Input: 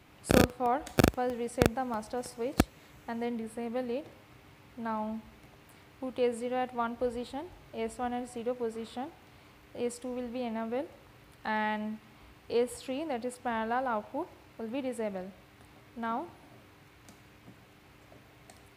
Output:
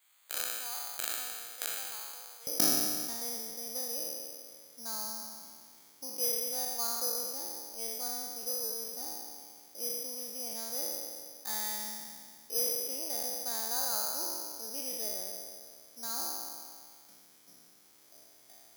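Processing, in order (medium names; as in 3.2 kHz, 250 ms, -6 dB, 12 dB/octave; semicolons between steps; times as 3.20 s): spectral sustain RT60 2.04 s; high-pass 1.3 kHz 12 dB/octave, from 2.47 s 250 Hz; careless resampling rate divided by 8×, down filtered, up zero stuff; trim -13.5 dB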